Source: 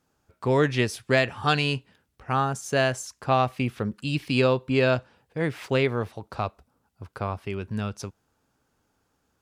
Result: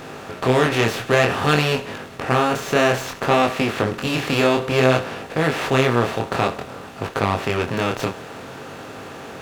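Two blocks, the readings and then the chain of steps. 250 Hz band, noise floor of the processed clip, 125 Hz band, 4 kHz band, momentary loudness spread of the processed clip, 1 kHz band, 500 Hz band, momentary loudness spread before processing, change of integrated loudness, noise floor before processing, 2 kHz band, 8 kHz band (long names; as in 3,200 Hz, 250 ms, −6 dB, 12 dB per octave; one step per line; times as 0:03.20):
+5.5 dB, −37 dBFS, +4.0 dB, +6.5 dB, 17 LU, +7.0 dB, +6.0 dB, 11 LU, +6.0 dB, −73 dBFS, +7.0 dB, +6.5 dB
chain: compressor on every frequency bin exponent 0.4
chorus effect 0.56 Hz, delay 19 ms, depth 7.5 ms
windowed peak hold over 3 samples
level +3.5 dB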